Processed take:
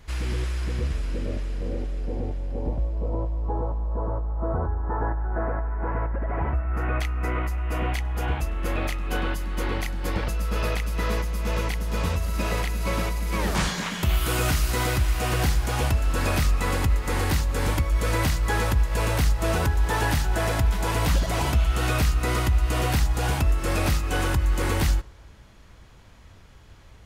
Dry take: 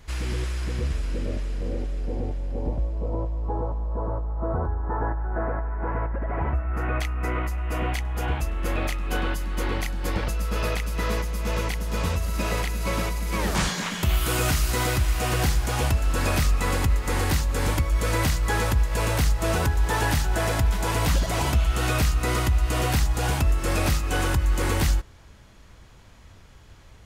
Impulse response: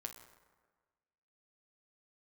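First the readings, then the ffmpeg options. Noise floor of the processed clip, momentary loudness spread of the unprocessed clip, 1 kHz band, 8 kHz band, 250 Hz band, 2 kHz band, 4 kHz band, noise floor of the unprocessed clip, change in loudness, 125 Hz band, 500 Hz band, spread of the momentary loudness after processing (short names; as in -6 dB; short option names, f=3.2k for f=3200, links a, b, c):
-48 dBFS, 6 LU, -0.5 dB, -2.0 dB, 0.0 dB, -0.5 dB, -1.0 dB, -49 dBFS, 0.0 dB, 0.0 dB, -0.5 dB, 6 LU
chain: -filter_complex "[0:a]asplit=2[a][b];[b]lowpass=f=7.9k:w=0.5412,lowpass=f=7.9k:w=1.3066[c];[1:a]atrim=start_sample=2205[d];[c][d]afir=irnorm=-1:irlink=0,volume=-11.5dB[e];[a][e]amix=inputs=2:normalize=0,volume=-1.5dB"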